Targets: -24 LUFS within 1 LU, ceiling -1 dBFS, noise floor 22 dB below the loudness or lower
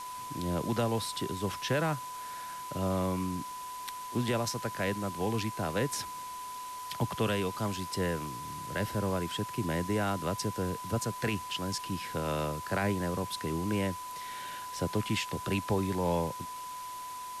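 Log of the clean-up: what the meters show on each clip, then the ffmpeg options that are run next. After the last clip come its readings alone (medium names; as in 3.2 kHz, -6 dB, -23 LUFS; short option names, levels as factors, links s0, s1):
steady tone 1 kHz; tone level -39 dBFS; noise floor -41 dBFS; noise floor target -56 dBFS; loudness -33.5 LUFS; peak level -18.0 dBFS; loudness target -24.0 LUFS
-> -af "bandreject=f=1000:w=30"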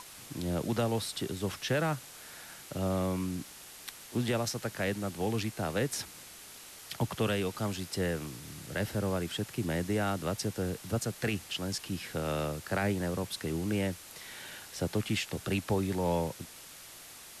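steady tone not found; noise floor -50 dBFS; noise floor target -56 dBFS
-> -af "afftdn=nr=6:nf=-50"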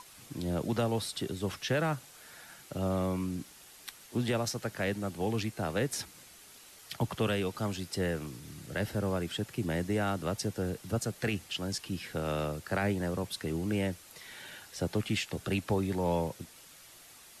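noise floor -54 dBFS; noise floor target -56 dBFS
-> -af "afftdn=nr=6:nf=-54"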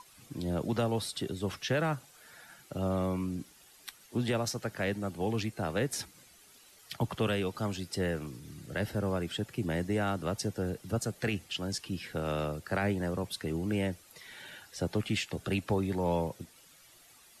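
noise floor -59 dBFS; loudness -33.5 LUFS; peak level -18.5 dBFS; loudness target -24.0 LUFS
-> -af "volume=2.99"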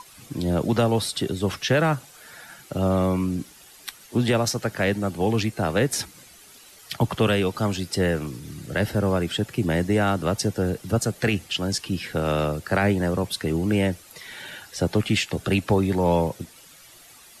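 loudness -24.0 LUFS; peak level -9.0 dBFS; noise floor -49 dBFS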